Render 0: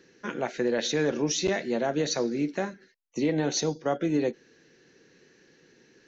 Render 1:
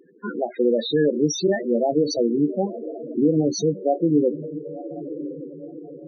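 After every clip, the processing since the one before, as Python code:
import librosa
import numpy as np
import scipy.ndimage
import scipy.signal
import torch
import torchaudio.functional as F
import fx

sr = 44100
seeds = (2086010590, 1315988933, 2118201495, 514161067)

y = fx.echo_diffused(x, sr, ms=1008, feedback_pct=50, wet_db=-11.0)
y = fx.spec_topn(y, sr, count=8)
y = y * librosa.db_to_amplitude(7.5)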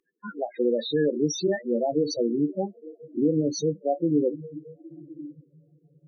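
y = fx.noise_reduce_blind(x, sr, reduce_db=26)
y = y * librosa.db_to_amplitude(-4.0)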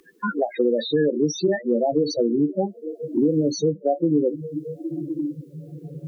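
y = fx.band_squash(x, sr, depth_pct=70)
y = y * librosa.db_to_amplitude(3.5)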